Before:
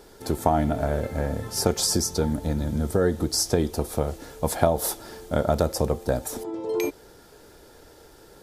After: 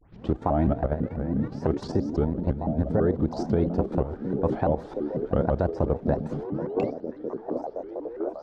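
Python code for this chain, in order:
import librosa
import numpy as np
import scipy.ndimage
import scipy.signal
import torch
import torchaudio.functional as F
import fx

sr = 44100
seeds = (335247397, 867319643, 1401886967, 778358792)

p1 = fx.tape_start_head(x, sr, length_s=0.36)
p2 = fx.level_steps(p1, sr, step_db=12)
p3 = fx.spacing_loss(p2, sr, db_at_10k=44)
p4 = p3 + fx.echo_stepped(p3, sr, ms=717, hz=210.0, octaves=0.7, feedback_pct=70, wet_db=-1, dry=0)
p5 = fx.vibrato_shape(p4, sr, shape='saw_up', rate_hz=6.0, depth_cents=250.0)
y = F.gain(torch.from_numpy(p5), 4.0).numpy()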